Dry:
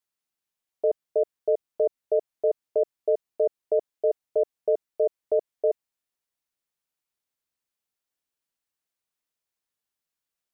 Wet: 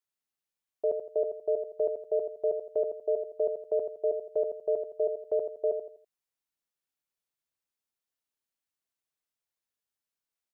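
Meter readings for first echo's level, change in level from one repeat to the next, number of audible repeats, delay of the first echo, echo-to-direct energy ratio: −7.0 dB, −9.5 dB, 3, 83 ms, −6.5 dB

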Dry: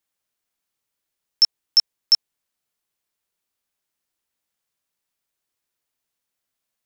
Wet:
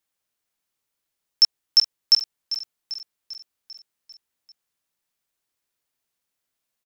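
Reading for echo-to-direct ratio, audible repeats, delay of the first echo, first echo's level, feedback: −10.5 dB, 5, 395 ms, −12.5 dB, 58%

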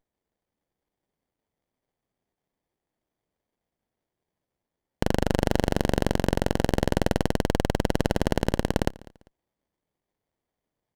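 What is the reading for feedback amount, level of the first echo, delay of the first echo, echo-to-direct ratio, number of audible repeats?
29%, −22.0 dB, 198 ms, −21.5 dB, 2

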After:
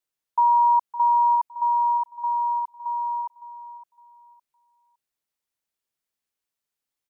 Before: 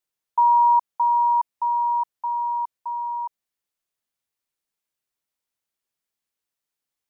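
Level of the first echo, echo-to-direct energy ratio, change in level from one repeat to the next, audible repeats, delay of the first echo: −14.0 dB, −13.5 dB, −11.5 dB, 2, 561 ms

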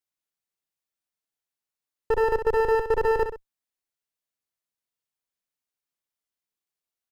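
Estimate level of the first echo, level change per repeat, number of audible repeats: −8.0 dB, −8.5 dB, 2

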